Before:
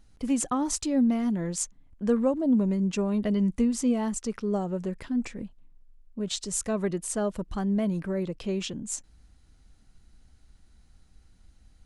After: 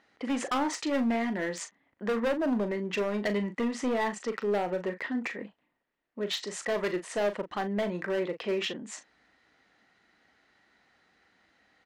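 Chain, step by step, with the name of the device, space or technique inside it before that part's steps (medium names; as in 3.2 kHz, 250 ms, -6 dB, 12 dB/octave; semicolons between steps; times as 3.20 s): megaphone (band-pass 450–3000 Hz; peaking EQ 1.9 kHz +10 dB 0.25 oct; hard clipper -31.5 dBFS, distortion -8 dB; doubling 39 ms -10 dB); trim +6.5 dB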